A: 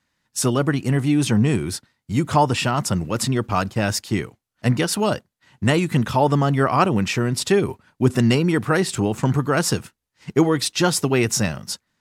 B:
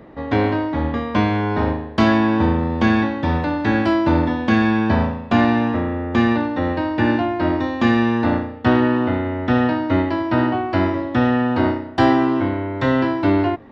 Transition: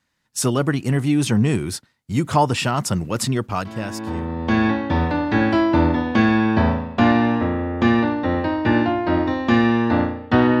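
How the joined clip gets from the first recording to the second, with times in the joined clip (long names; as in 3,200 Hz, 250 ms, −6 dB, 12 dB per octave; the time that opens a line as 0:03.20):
A
0:04.02: continue with B from 0:02.35, crossfade 1.38 s quadratic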